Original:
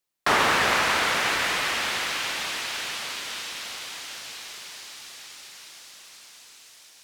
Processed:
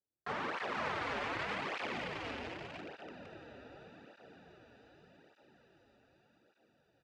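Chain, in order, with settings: local Wiener filter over 41 samples; low-pass 5.1 kHz 12 dB/octave; treble shelf 2.3 kHz -10.5 dB; compression, threshold -31 dBFS, peak gain reduction 11 dB; peak limiter -27.5 dBFS, peak gain reduction 10.5 dB; delay 496 ms -4.5 dB; cancelling through-zero flanger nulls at 0.84 Hz, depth 6.4 ms; trim +1.5 dB

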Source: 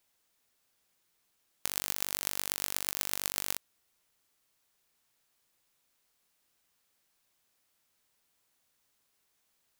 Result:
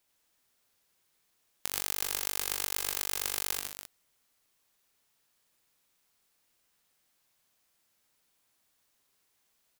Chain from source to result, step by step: loudspeakers at several distances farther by 29 m -3 dB, 51 m -8 dB, 98 m -9 dB; trim -1 dB

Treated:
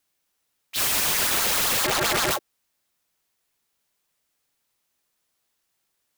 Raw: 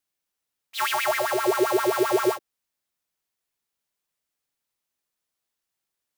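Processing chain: 1.84–2.31 s: three-band isolator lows -24 dB, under 600 Hz, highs -21 dB, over 2.3 kHz; integer overflow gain 26.5 dB; trim +8.5 dB

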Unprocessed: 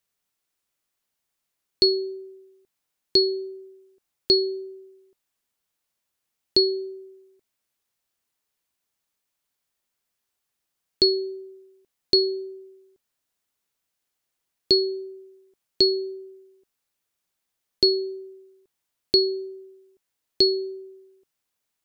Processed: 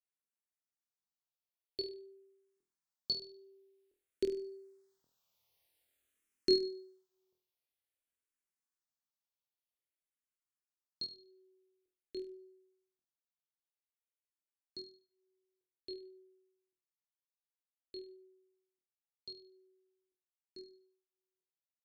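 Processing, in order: Doppler pass-by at 5.57 s, 6 m/s, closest 2.3 m; flutter echo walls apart 4.2 m, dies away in 0.39 s; barber-pole phaser -0.5 Hz; trim +2.5 dB

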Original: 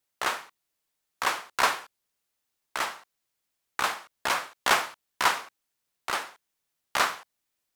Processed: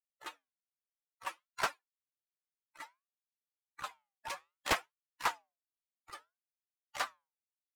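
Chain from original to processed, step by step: expander on every frequency bin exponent 3; flange 0.6 Hz, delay 2.6 ms, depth 5.9 ms, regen -85%; loudspeaker Doppler distortion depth 0.86 ms

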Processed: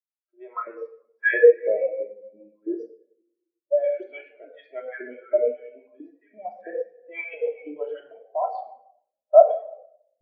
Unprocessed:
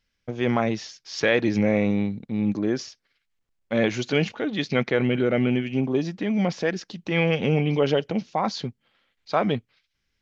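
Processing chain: level-controlled noise filter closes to 940 Hz, open at -20.5 dBFS; 2.52–3.84 s: dynamic bell 2.3 kHz, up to -5 dB, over -46 dBFS, Q 3.2; LFO high-pass saw up 3 Hz 420–1700 Hz; simulated room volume 2500 m³, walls mixed, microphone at 2.9 m; spectral contrast expander 2.5:1; trim +1 dB

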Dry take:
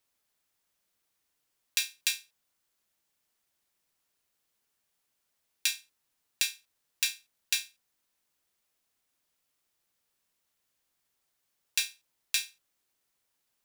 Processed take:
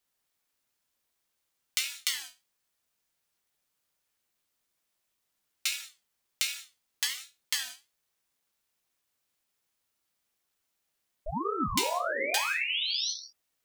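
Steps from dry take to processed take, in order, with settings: painted sound rise, 11.26–13.12 s, 300–5300 Hz -30 dBFS; gated-style reverb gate 220 ms falling, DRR 2 dB; ring modulator with a swept carrier 510 Hz, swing 70%, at 1.3 Hz

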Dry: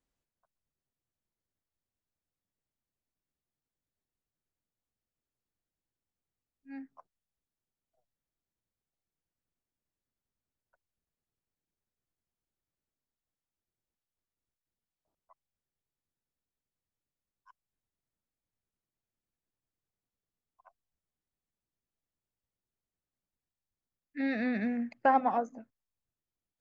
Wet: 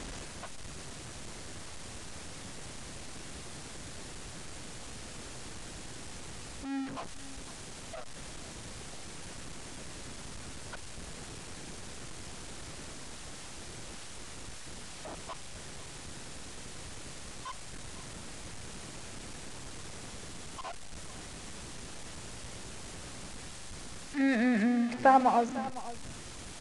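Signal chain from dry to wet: jump at every zero crossing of -36.5 dBFS; resampled via 22.05 kHz; delay 507 ms -16.5 dB; trim +2.5 dB

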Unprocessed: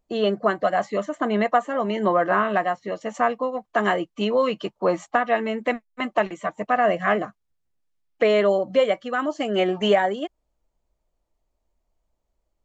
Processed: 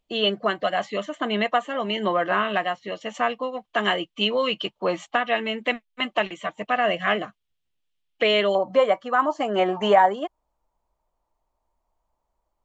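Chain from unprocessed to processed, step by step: peaking EQ 3.1 kHz +14 dB 0.95 oct, from 8.55 s 960 Hz; trim -3.5 dB

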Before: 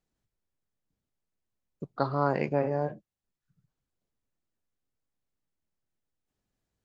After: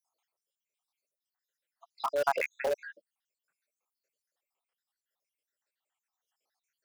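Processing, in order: random holes in the spectrogram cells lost 73%; high-pass 530 Hz 24 dB/octave; in parallel at -12 dB: integer overflow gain 32 dB; on the sum: trim +7 dB

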